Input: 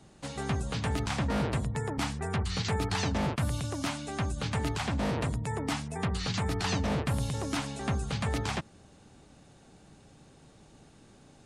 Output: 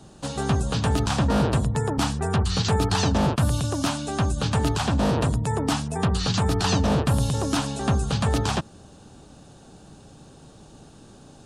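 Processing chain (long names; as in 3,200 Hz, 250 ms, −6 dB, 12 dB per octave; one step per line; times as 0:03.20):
parametric band 2,100 Hz −11 dB 0.42 octaves
level +8.5 dB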